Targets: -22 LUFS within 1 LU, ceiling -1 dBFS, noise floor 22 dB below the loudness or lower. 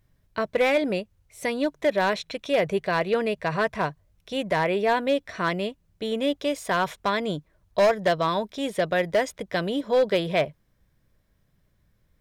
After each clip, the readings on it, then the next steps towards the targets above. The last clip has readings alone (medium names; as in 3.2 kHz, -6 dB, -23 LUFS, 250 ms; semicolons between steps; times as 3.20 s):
clipped samples 0.9%; clipping level -15.0 dBFS; loudness -25.5 LUFS; peak level -15.0 dBFS; loudness target -22.0 LUFS
-> clip repair -15 dBFS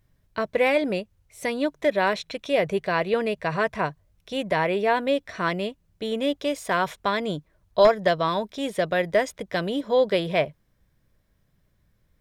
clipped samples 0.0%; loudness -25.0 LUFS; peak level -6.0 dBFS; loudness target -22.0 LUFS
-> trim +3 dB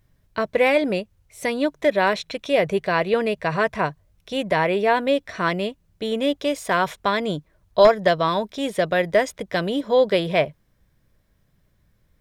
loudness -22.0 LUFS; peak level -3.0 dBFS; noise floor -64 dBFS